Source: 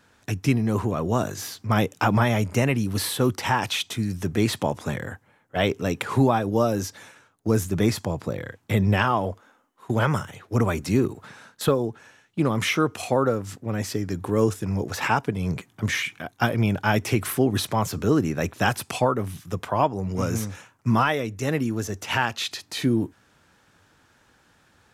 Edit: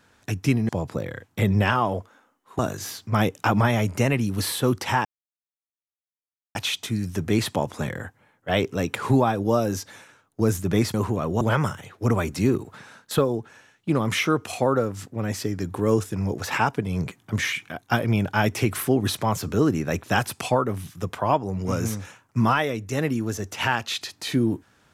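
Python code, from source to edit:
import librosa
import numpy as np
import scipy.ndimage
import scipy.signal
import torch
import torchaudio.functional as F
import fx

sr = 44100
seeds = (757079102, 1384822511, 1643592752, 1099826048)

y = fx.edit(x, sr, fx.swap(start_s=0.69, length_s=0.47, other_s=8.01, other_length_s=1.9),
    fx.insert_silence(at_s=3.62, length_s=1.5), tone=tone)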